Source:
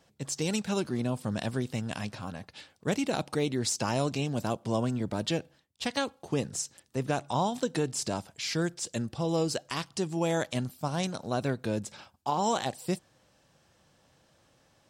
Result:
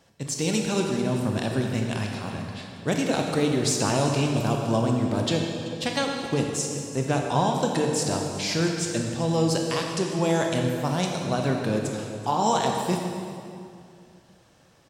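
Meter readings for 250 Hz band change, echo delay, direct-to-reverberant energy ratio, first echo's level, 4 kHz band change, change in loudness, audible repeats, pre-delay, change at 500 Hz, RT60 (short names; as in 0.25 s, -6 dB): +6.5 dB, 0.383 s, 1.0 dB, -17.0 dB, +6.0 dB, +6.0 dB, 1, 21 ms, +6.0 dB, 2.4 s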